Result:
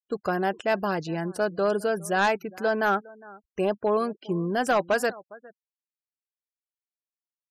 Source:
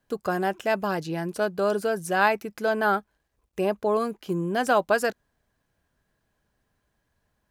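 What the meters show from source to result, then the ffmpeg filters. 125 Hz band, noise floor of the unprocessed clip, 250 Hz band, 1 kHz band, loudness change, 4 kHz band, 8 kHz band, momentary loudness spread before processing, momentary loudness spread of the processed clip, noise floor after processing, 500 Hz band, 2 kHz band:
0.0 dB, -76 dBFS, 0.0 dB, -1.0 dB, -0.5 dB, 0.0 dB, -0.5 dB, 7 LU, 6 LU, under -85 dBFS, -0.5 dB, -1.0 dB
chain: -filter_complex "[0:a]asplit=2[a][b];[b]adelay=408.2,volume=-22dB,highshelf=f=4k:g=-9.18[c];[a][c]amix=inputs=2:normalize=0,asoftclip=type=hard:threshold=-16dB,afftfilt=real='re*gte(hypot(re,im),0.00631)':imag='im*gte(hypot(re,im),0.00631)':win_size=1024:overlap=0.75"

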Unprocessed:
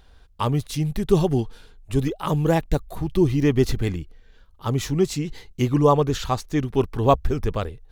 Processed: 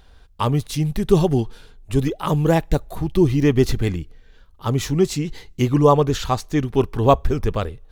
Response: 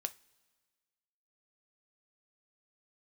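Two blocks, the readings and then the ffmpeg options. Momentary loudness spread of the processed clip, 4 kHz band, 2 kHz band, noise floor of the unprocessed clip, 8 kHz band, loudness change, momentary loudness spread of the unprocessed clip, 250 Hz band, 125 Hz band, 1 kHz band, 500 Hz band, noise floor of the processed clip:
9 LU, +2.5 dB, +2.5 dB, -51 dBFS, +2.5 dB, +2.5 dB, 9 LU, +2.5 dB, +2.5 dB, +2.5 dB, +3.0 dB, -49 dBFS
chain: -filter_complex "[0:a]asplit=2[a][b];[1:a]atrim=start_sample=2205[c];[b][c]afir=irnorm=-1:irlink=0,volume=-12dB[d];[a][d]amix=inputs=2:normalize=0,volume=1dB"

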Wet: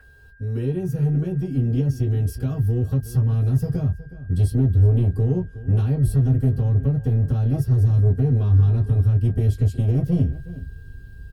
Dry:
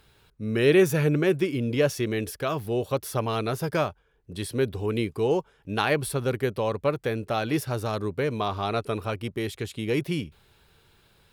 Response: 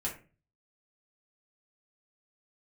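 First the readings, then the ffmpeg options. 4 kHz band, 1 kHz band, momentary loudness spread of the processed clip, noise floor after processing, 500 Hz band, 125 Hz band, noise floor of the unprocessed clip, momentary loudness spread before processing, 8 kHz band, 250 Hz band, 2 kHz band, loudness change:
under -10 dB, under -10 dB, 8 LU, -42 dBFS, -7.0 dB, +14.0 dB, -62 dBFS, 9 LU, n/a, +2.5 dB, under -10 dB, +6.0 dB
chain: -filter_complex "[0:a]bandreject=f=3.6k:w=11,acrossover=split=290[a][b];[b]acompressor=threshold=-30dB:ratio=10[c];[a][c]amix=inputs=2:normalize=0,equalizer=f=2k:t=o:w=1.8:g=-12,aeval=exprs='val(0)+0.00562*sin(2*PI*1600*n/s)':c=same,asplit=2[d][e];[e]acompressor=threshold=-33dB:ratio=6,volume=-1.5dB[f];[d][f]amix=inputs=2:normalize=0,asubboost=boost=9.5:cutoff=200,asoftclip=type=tanh:threshold=-10.5dB,asplit=2[g][h];[h]adelay=367.3,volume=-16dB,highshelf=f=4k:g=-8.27[i];[g][i]amix=inputs=2:normalize=0[j];[1:a]atrim=start_sample=2205,atrim=end_sample=3528,asetrate=83790,aresample=44100[k];[j][k]afir=irnorm=-1:irlink=0,volume=-1dB"

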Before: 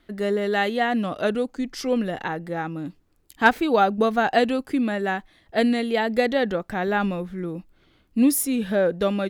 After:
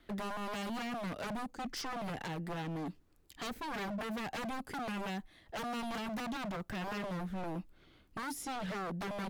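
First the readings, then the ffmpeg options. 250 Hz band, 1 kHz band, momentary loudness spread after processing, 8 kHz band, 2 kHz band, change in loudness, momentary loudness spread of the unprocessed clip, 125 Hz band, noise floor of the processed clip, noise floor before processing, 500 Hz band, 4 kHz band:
-16.5 dB, -15.0 dB, 5 LU, -15.5 dB, -16.5 dB, -16.5 dB, 11 LU, -9.0 dB, -65 dBFS, -62 dBFS, -20.0 dB, -11.5 dB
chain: -filter_complex "[0:a]acrossover=split=280|7400[a][b][c];[a]acompressor=threshold=-25dB:ratio=4[d];[b]acompressor=threshold=-34dB:ratio=4[e];[c]acompressor=threshold=-54dB:ratio=4[f];[d][e][f]amix=inputs=3:normalize=0,aeval=exprs='0.0282*(abs(mod(val(0)/0.0282+3,4)-2)-1)':c=same,volume=-3dB"

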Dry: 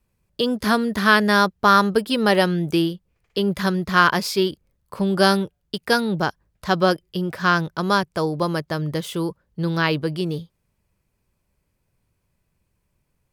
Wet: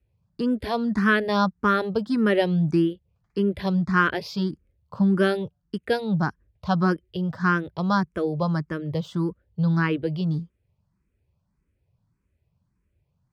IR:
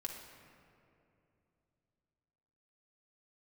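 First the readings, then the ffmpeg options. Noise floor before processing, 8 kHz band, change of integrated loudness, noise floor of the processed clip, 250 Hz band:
-73 dBFS, under -15 dB, -3.5 dB, -74 dBFS, -1.0 dB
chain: -filter_complex "[0:a]highpass=74,aemphasis=mode=reproduction:type=bsi,asplit=2[a][b];[b]afreqshift=1.7[c];[a][c]amix=inputs=2:normalize=1,volume=-3dB"

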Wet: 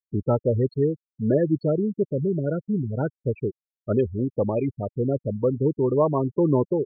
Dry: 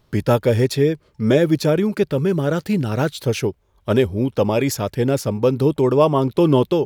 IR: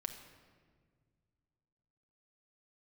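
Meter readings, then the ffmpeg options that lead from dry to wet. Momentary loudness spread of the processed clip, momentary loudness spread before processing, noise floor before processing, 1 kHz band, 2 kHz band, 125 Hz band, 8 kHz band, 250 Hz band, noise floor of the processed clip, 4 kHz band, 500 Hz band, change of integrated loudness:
7 LU, 6 LU, -61 dBFS, -8.0 dB, -16.5 dB, -5.0 dB, under -40 dB, -5.5 dB, under -85 dBFS, under -30 dB, -5.5 dB, -5.5 dB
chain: -af "afftfilt=real='re*gte(hypot(re,im),0.224)':imag='im*gte(hypot(re,im),0.224)':win_size=1024:overlap=0.75,highshelf=f=2.2k:g=-8.5,volume=-5dB"

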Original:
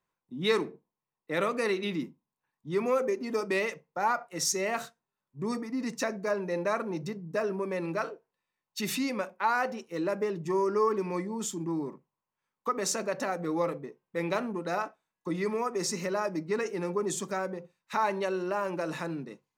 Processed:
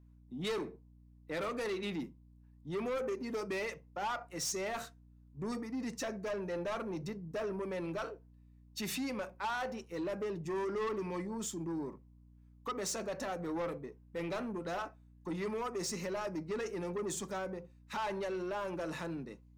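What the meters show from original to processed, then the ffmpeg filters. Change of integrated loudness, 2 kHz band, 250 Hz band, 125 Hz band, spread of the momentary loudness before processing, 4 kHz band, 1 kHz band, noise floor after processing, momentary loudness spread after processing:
-7.5 dB, -8.0 dB, -6.0 dB, -5.0 dB, 9 LU, -6.0 dB, -8.5 dB, -60 dBFS, 7 LU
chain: -af "asoftclip=type=tanh:threshold=-28.5dB,aeval=exprs='val(0)+0.00178*(sin(2*PI*60*n/s)+sin(2*PI*2*60*n/s)/2+sin(2*PI*3*60*n/s)/3+sin(2*PI*4*60*n/s)/4+sin(2*PI*5*60*n/s)/5)':c=same,volume=-3.5dB"

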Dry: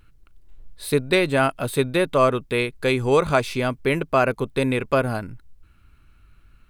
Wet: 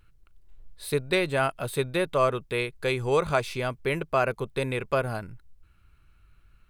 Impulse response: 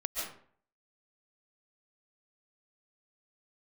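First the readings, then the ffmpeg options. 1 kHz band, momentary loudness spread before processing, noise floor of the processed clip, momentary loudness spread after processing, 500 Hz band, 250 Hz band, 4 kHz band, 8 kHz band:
-5.0 dB, 6 LU, -60 dBFS, 7 LU, -5.5 dB, -9.0 dB, -5.0 dB, -5.0 dB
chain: -af "equalizer=f=260:w=3.4:g=-7.5,volume=-5dB"

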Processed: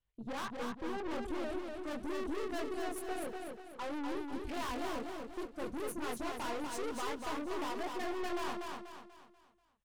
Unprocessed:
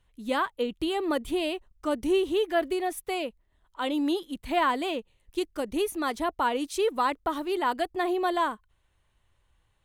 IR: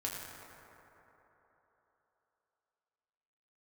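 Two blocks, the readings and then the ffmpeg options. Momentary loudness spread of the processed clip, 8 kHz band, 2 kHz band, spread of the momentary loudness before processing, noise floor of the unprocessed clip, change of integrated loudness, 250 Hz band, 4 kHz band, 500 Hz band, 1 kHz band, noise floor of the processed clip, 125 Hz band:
6 LU, -6.0 dB, -10.0 dB, 7 LU, -70 dBFS, -11.0 dB, -10.0 dB, -11.5 dB, -11.5 dB, -12.0 dB, -73 dBFS, n/a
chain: -filter_complex "[0:a]afwtdn=0.02,aemphasis=mode=production:type=cd,acrossover=split=550|6100[a][b][c];[c]dynaudnorm=f=860:g=3:m=15.5dB[d];[a][b][d]amix=inputs=3:normalize=0,flanger=delay=20:depth=2.2:speed=1.5,adynamicsmooth=sensitivity=6.5:basefreq=4.6k,aeval=exprs='(tanh(126*val(0)+0.5)-tanh(0.5))/126':c=same,aecho=1:1:243|486|729|972|1215:0.631|0.259|0.106|0.0435|0.0178,volume=3.5dB"

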